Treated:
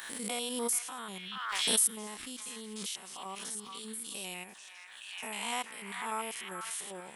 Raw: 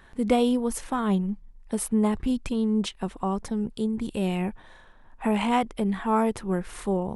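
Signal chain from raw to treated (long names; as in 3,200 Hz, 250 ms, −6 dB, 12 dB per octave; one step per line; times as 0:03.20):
spectrum averaged block by block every 100 ms
first difference
on a send: echo through a band-pass that steps 432 ms, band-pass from 1,600 Hz, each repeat 0.7 octaves, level −2.5 dB
on the sum: background raised ahead of every attack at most 35 dB per second
level +6.5 dB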